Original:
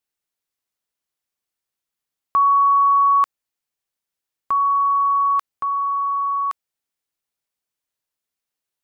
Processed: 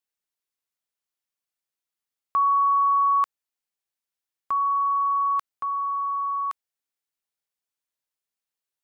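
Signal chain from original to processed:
low-shelf EQ 500 Hz −4 dB
level −4.5 dB

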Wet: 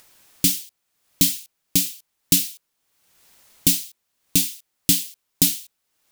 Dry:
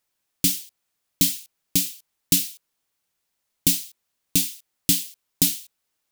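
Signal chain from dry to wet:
upward compression, threshold −39 dBFS
level +2 dB

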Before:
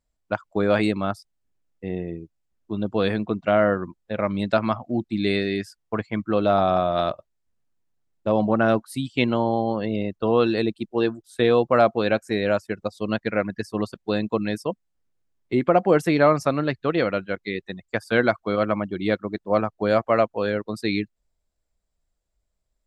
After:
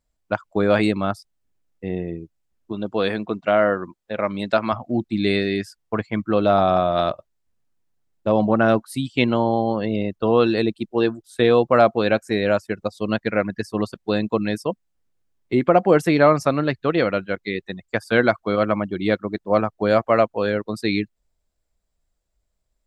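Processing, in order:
0:02.72–0:04.73: low-shelf EQ 170 Hz −11.5 dB
level +2.5 dB

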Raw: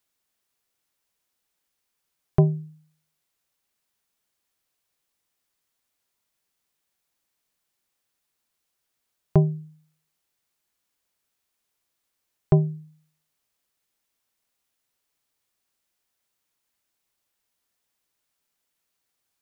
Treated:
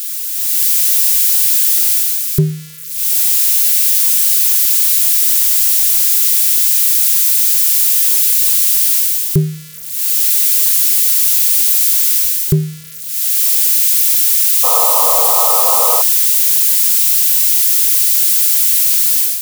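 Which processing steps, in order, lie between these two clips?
spike at every zero crossing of −20.5 dBFS
automatic gain control gain up to 11 dB
Butterworth band-reject 770 Hz, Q 0.74
sound drawn into the spectrogram noise, 0:14.63–0:16.02, 450–1,300 Hz −20 dBFS
level +1.5 dB

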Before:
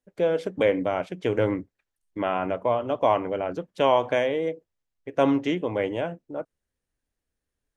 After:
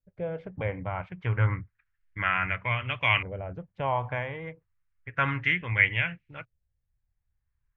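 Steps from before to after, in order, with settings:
drawn EQ curve 120 Hz 0 dB, 290 Hz −26 dB, 660 Hz −25 dB, 2,200 Hz +3 dB, 3,700 Hz −1 dB
auto-filter low-pass saw up 0.31 Hz 560–2,700 Hz
level +8.5 dB

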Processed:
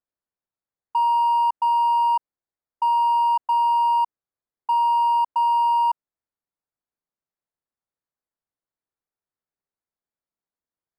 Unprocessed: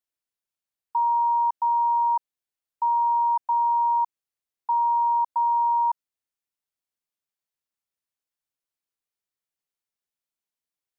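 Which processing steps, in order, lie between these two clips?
adaptive Wiener filter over 15 samples
level +3.5 dB

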